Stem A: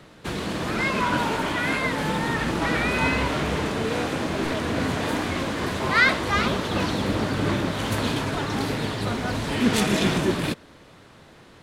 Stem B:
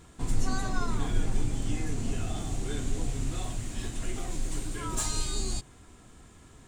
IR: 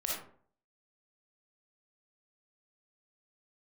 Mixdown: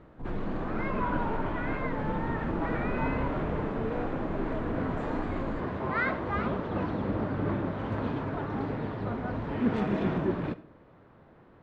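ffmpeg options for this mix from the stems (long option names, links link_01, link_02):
-filter_complex "[0:a]volume=-6.5dB,asplit=2[link_01][link_02];[link_02]volume=-17.5dB[link_03];[1:a]asoftclip=type=tanh:threshold=-26dB,volume=-4.5dB[link_04];[2:a]atrim=start_sample=2205[link_05];[link_03][link_05]afir=irnorm=-1:irlink=0[link_06];[link_01][link_04][link_06]amix=inputs=3:normalize=0,lowpass=1300"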